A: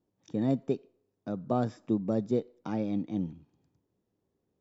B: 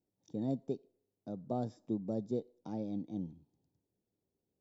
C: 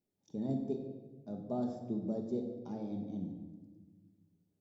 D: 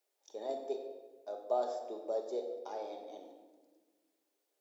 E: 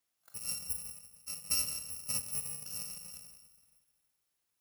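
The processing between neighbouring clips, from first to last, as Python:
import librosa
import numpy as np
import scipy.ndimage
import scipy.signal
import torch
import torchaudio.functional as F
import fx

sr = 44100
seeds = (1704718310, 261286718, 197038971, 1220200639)

y1 = fx.band_shelf(x, sr, hz=1800.0, db=-11.0, octaves=1.7)
y1 = y1 * librosa.db_to_amplitude(-7.5)
y2 = fx.room_shoebox(y1, sr, seeds[0], volume_m3=1000.0, walls='mixed', distance_m=1.3)
y2 = y2 * librosa.db_to_amplitude(-3.0)
y3 = scipy.signal.sosfilt(scipy.signal.cheby2(4, 50, 190.0, 'highpass', fs=sr, output='sos'), y2)
y3 = y3 * librosa.db_to_amplitude(9.0)
y4 = fx.bit_reversed(y3, sr, seeds[1], block=128)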